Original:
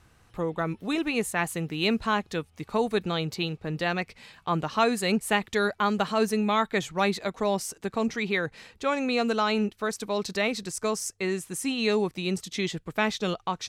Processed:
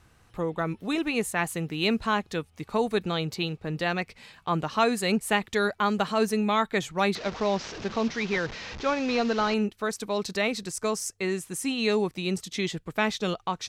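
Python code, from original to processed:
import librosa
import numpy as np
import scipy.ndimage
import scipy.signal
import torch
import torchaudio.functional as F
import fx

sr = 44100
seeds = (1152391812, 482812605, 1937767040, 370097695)

y = fx.delta_mod(x, sr, bps=32000, step_db=-32.5, at=(7.15, 9.54))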